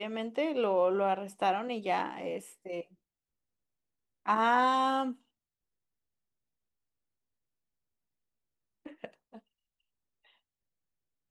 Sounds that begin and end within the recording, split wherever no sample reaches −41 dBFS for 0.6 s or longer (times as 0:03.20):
0:04.26–0:05.13
0:08.86–0:09.37